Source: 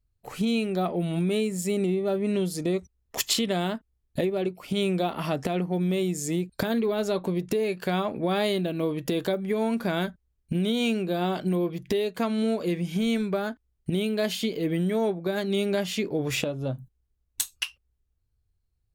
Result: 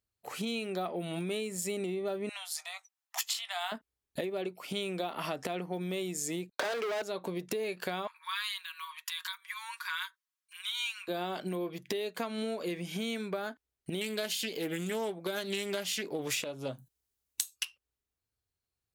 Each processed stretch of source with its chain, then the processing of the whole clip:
2.29–3.72 s: steep high-pass 710 Hz 72 dB/octave + doubling 17 ms -13 dB
6.50–7.02 s: high-pass 410 Hz 24 dB/octave + distance through air 220 m + waveshaping leveller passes 5
8.07–11.08 s: Chebyshev high-pass 950 Hz, order 8 + comb 5.5 ms, depth 46%
14.01–17.65 s: treble shelf 4.1 kHz +10 dB + loudspeaker Doppler distortion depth 0.2 ms
whole clip: high-pass 550 Hz 6 dB/octave; compression, threshold -31 dBFS

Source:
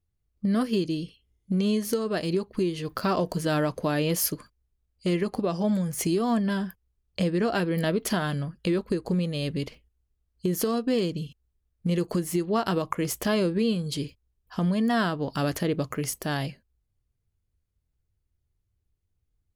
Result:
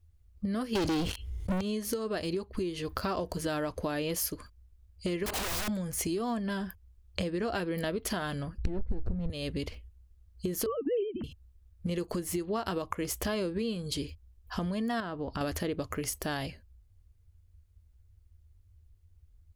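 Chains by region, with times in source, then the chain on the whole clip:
0.75–1.61 s: treble shelf 11 kHz -7 dB + waveshaping leveller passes 5 + level flattener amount 50%
5.26–5.68 s: overdrive pedal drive 34 dB, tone 7.6 kHz, clips at -15.5 dBFS + integer overflow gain 25 dB
8.58–9.30 s: comb filter that takes the minimum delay 0.49 ms + tilt EQ -4.5 dB/octave + compression 3:1, threshold -18 dBFS
10.66–11.24 s: formants replaced by sine waves + tilt shelf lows +5 dB, about 780 Hz + hum notches 50/100/150/200 Hz
15.00–15.41 s: low-pass 1.9 kHz 6 dB/octave + compression 1.5:1, threshold -37 dBFS
whole clip: resonant low shelf 110 Hz +8 dB, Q 3; compression 3:1, threshold -39 dBFS; trim +5.5 dB

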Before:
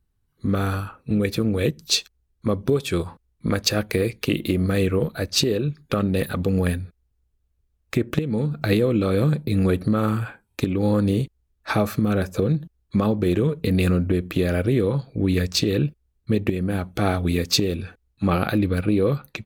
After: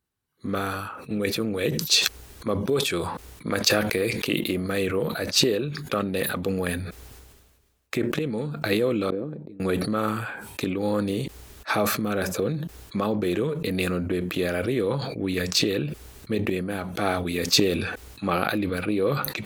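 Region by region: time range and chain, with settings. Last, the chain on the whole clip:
9.10–9.60 s: low-pass 1.2 kHz 6 dB/octave + peaking EQ 310 Hz +15 dB 2.3 oct + inverted gate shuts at -12 dBFS, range -32 dB
whole clip: high-pass 430 Hz 6 dB/octave; decay stretcher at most 41 dB/s

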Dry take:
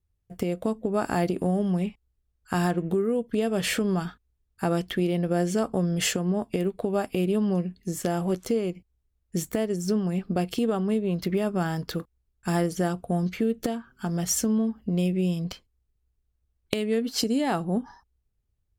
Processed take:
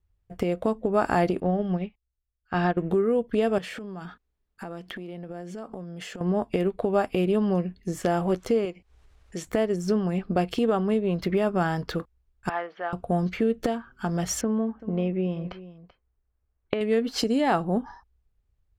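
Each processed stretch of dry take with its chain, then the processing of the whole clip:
1.40–2.77 s: low-pass 4.8 kHz 24 dB/octave + band-stop 1 kHz, Q 6.5 + upward expansion 2.5:1, over -33 dBFS
3.58–6.21 s: resonant low shelf 130 Hz -9.5 dB, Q 1.5 + compression 12:1, threshold -35 dBFS
8.65–9.47 s: low-pass 9.6 kHz + bass shelf 310 Hz -12 dB + upward compressor, threshold -41 dBFS
12.49–12.93 s: Butterworth band-pass 1.7 kHz, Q 0.55 + upward compressor, threshold -43 dBFS + distance through air 330 m
14.41–16.81 s: low-pass 2 kHz + bass shelf 160 Hz -7 dB + delay 385 ms -16.5 dB
whole clip: low-pass 1.7 kHz 6 dB/octave; peaking EQ 190 Hz -7.5 dB 2.8 oct; trim +7.5 dB

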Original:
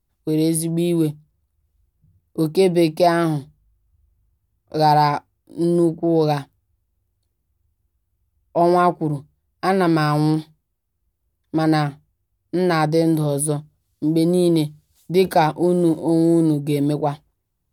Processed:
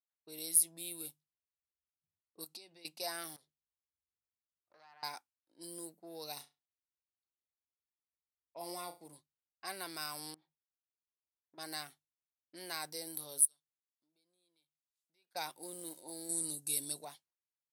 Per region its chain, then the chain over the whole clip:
2.44–2.85 s: peaking EQ 4.9 kHz +4.5 dB 0.91 oct + compression 10:1, threshold -26 dBFS
3.36–5.03 s: compression 5:1, threshold -32 dBFS + transformer saturation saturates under 1.1 kHz
6.33–9.08 s: dynamic bell 1.5 kHz, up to -6 dB, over -33 dBFS, Q 1.2 + Butterworth band-stop 1.6 kHz, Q 6.8 + flutter echo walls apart 5.9 m, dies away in 0.25 s
10.34–11.58 s: low-pass 1.2 kHz + compression 5:1, threshold -30 dBFS
13.45–15.35 s: pre-emphasis filter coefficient 0.9 + compression 2:1, threshold -58 dBFS
16.29–17.05 s: low-pass 11 kHz 24 dB/octave + tone controls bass +7 dB, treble +12 dB
whole clip: treble shelf 9.3 kHz +5.5 dB; level-controlled noise filter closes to 1.8 kHz, open at -15.5 dBFS; differentiator; trim -7 dB

